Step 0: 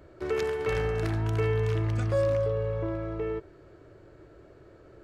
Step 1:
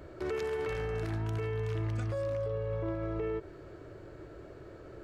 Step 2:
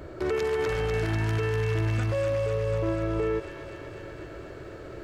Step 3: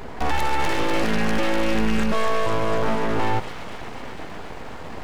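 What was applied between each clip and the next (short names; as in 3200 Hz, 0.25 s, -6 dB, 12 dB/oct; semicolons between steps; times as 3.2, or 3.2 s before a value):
compressor, threshold -31 dBFS, peak gain reduction 9.5 dB; limiter -31 dBFS, peak gain reduction 7.5 dB; gain +4 dB
thin delay 0.247 s, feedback 77%, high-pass 1500 Hz, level -3 dB; gain +7 dB
notches 50/100 Hz; full-wave rectifier; gain +8.5 dB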